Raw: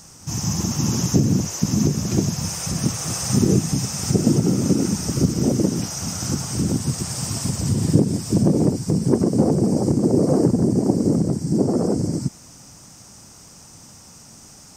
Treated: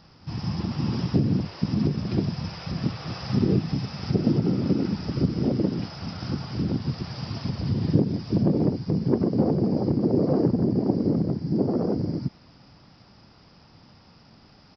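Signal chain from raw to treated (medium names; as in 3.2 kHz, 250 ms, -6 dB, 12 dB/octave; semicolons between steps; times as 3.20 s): resampled via 11.025 kHz; trim -4.5 dB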